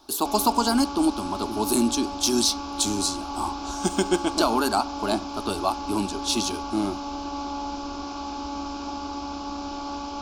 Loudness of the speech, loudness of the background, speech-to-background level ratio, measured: −25.0 LKFS, −33.0 LKFS, 8.0 dB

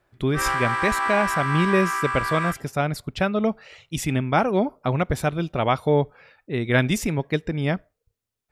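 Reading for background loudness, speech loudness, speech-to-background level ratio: −25.0 LKFS, −24.0 LKFS, 1.0 dB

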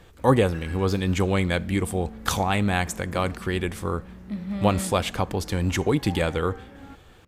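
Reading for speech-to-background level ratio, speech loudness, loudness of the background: 17.5 dB, −25.0 LKFS, −42.5 LKFS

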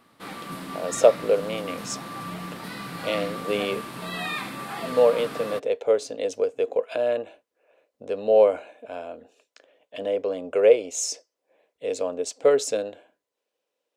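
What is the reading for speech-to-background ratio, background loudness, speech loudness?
10.0 dB, −34.5 LKFS, −24.5 LKFS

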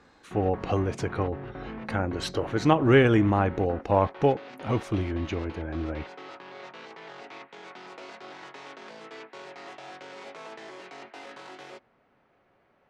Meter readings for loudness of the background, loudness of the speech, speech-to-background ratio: −42.0 LKFS, −26.0 LKFS, 16.0 dB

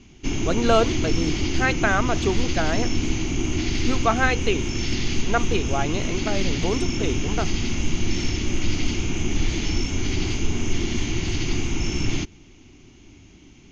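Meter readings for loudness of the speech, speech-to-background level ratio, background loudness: −25.5 LKFS, 1.0 dB, −26.5 LKFS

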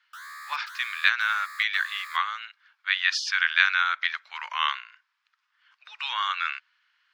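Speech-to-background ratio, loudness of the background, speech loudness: 16.0 dB, −41.5 LKFS, −25.5 LKFS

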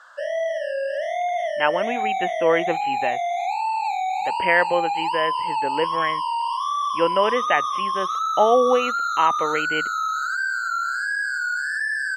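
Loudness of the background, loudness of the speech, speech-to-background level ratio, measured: −24.5 LKFS, −23.5 LKFS, 1.0 dB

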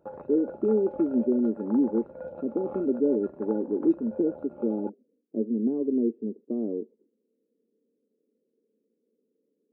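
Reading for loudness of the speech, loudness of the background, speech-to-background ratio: −27.5 LKFS, −41.5 LKFS, 14.0 dB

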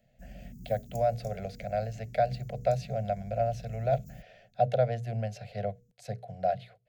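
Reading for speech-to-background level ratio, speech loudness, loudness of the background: 17.0 dB, −32.0 LKFS, −49.0 LKFS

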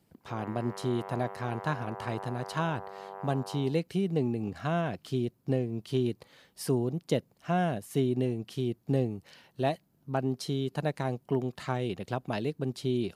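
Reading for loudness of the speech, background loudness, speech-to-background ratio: −32.5 LKFS, −43.0 LKFS, 10.5 dB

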